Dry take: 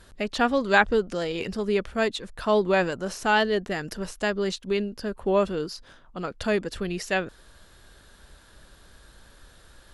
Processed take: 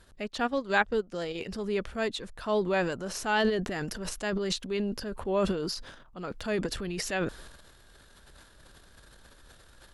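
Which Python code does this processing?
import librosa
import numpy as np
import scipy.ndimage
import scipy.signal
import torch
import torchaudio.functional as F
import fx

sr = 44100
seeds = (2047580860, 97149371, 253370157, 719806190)

y = fx.transient(x, sr, attack_db=-3, sustain_db=fx.steps((0.0, -9.0), (1.49, 4.0), (3.14, 11.0)))
y = F.gain(torch.from_numpy(y), -5.0).numpy()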